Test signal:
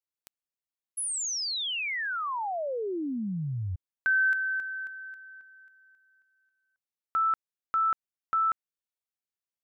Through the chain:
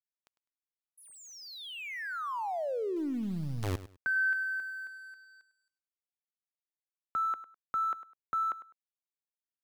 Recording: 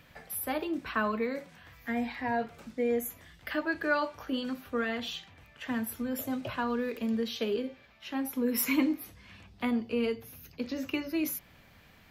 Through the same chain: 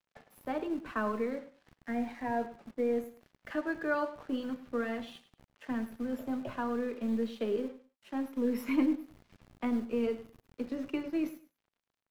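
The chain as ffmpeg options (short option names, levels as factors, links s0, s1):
-filter_complex "[0:a]lowpass=f=1000:p=1,acrossover=split=170[s0][s1];[s0]acrusher=bits=6:dc=4:mix=0:aa=0.000001[s2];[s2][s1]amix=inputs=2:normalize=0,aeval=exprs='sgn(val(0))*max(abs(val(0))-0.00141,0)':c=same,aecho=1:1:102|204:0.178|0.0373"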